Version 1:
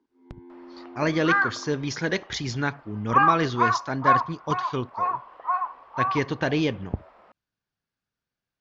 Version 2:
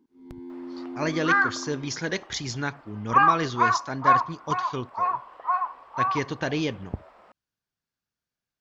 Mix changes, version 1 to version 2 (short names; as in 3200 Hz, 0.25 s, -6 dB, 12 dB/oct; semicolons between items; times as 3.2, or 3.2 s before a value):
speech -3.5 dB; first sound: remove BPF 430–2400 Hz; master: remove air absorption 97 m